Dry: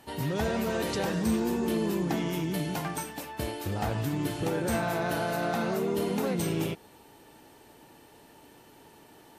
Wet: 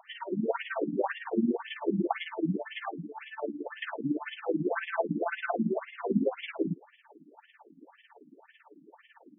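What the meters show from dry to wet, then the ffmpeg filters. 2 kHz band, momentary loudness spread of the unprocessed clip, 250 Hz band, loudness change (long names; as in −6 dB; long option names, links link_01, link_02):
−1.0 dB, 6 LU, −1.5 dB, −2.5 dB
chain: -af "tremolo=f=18:d=0.79,afftfilt=real='re*between(b*sr/1024,220*pow(2500/220,0.5+0.5*sin(2*PI*1.9*pts/sr))/1.41,220*pow(2500/220,0.5+0.5*sin(2*PI*1.9*pts/sr))*1.41)':imag='im*between(b*sr/1024,220*pow(2500/220,0.5+0.5*sin(2*PI*1.9*pts/sr))/1.41,220*pow(2500/220,0.5+0.5*sin(2*PI*1.9*pts/sr))*1.41)':win_size=1024:overlap=0.75,volume=8.5dB"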